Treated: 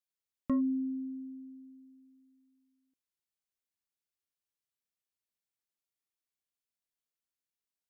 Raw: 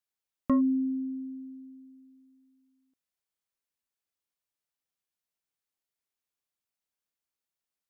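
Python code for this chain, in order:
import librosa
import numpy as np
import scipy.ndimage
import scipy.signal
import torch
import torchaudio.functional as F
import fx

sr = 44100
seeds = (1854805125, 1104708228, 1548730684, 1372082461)

y = fx.peak_eq(x, sr, hz=910.0, db=-5.0, octaves=1.6)
y = y * librosa.db_to_amplitude(-4.5)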